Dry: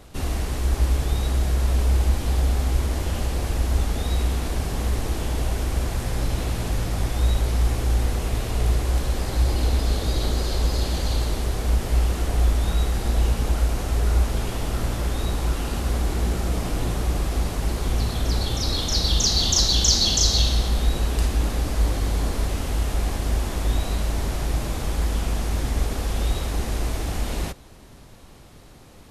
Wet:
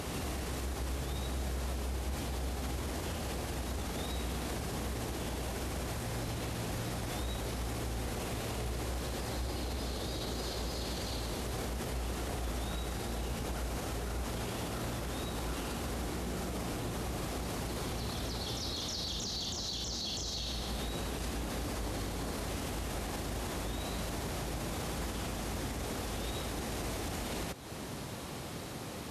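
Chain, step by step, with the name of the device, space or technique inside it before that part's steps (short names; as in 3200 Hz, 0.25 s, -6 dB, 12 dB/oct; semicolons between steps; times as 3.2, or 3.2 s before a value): reverse echo 0.438 s -14 dB; podcast mastering chain (HPF 100 Hz 12 dB/oct; de-esser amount 50%; compressor 3:1, threshold -42 dBFS, peak gain reduction 16 dB; limiter -36 dBFS, peak gain reduction 10.5 dB; gain +8 dB; MP3 96 kbps 32000 Hz)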